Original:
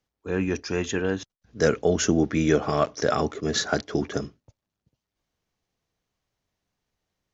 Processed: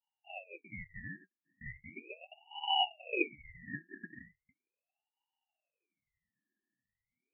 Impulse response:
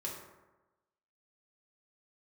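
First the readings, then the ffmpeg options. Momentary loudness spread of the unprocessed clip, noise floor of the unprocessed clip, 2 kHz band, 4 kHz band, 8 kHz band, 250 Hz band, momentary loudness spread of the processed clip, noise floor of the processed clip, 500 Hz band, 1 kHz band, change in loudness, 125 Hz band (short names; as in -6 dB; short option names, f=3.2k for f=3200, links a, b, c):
9 LU, under -85 dBFS, -10.0 dB, -3.0 dB, n/a, -22.0 dB, 20 LU, under -85 dBFS, -22.5 dB, -8.0 dB, -12.5 dB, -23.5 dB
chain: -af "asuperpass=centerf=1000:order=20:qfactor=4.9,aeval=exprs='val(0)*sin(2*PI*1300*n/s+1300*0.45/0.38*sin(2*PI*0.38*n/s))':c=same,volume=8dB"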